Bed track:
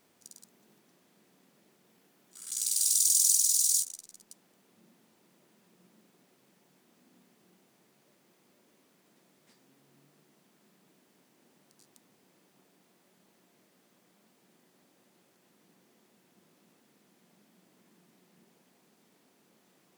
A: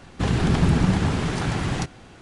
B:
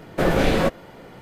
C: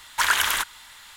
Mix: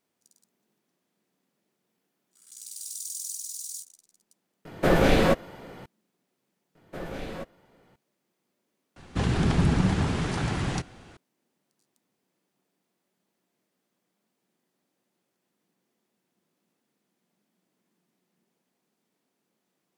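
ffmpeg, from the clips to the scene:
-filter_complex "[2:a]asplit=2[s0][s1];[0:a]volume=0.251[s2];[s0]atrim=end=1.21,asetpts=PTS-STARTPTS,volume=0.891,afade=t=in:d=0.004:c=hsin,afade=t=out:st=1.206:d=0.004:c=hsin,adelay=205065S[s3];[s1]atrim=end=1.21,asetpts=PTS-STARTPTS,volume=0.133,afade=t=in:d=0.004:c=hsin,afade=t=out:st=1.206:d=0.004:c=hsin,adelay=6750[s4];[1:a]atrim=end=2.21,asetpts=PTS-STARTPTS,volume=0.668,afade=t=in:d=0.004:c=hsin,afade=t=out:st=2.206:d=0.004:c=hsin,adelay=8960[s5];[s2][s3][s4][s5]amix=inputs=4:normalize=0"

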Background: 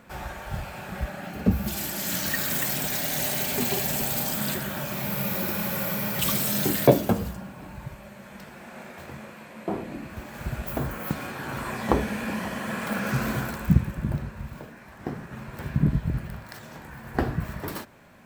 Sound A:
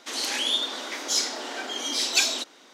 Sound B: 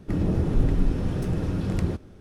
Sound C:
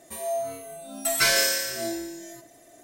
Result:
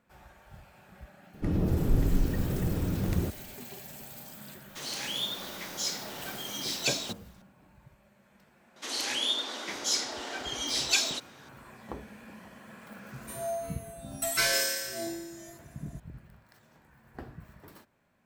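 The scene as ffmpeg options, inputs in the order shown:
-filter_complex "[1:a]asplit=2[s0][s1];[0:a]volume=0.119[s2];[s0]acrusher=bits=7:dc=4:mix=0:aa=0.000001[s3];[2:a]atrim=end=2.2,asetpts=PTS-STARTPTS,volume=0.668,afade=t=in:d=0.004:c=hsin,afade=t=out:st=2.196:d=0.004:c=hsin,adelay=1340[s4];[s3]atrim=end=2.73,asetpts=PTS-STARTPTS,volume=0.398,afade=t=in:d=0.004:c=hsin,afade=t=out:st=2.726:d=0.004:c=hsin,adelay=206829S[s5];[s1]atrim=end=2.73,asetpts=PTS-STARTPTS,volume=0.631,afade=t=in:d=0.004:c=hsin,afade=t=out:st=2.726:d=0.004:c=hsin,adelay=8760[s6];[3:a]atrim=end=2.83,asetpts=PTS-STARTPTS,volume=0.531,afade=t=in:d=0.004:c=hsin,afade=t=out:st=2.826:d=0.004:c=hsin,adelay=13170[s7];[s2][s4][s5][s6][s7]amix=inputs=5:normalize=0"

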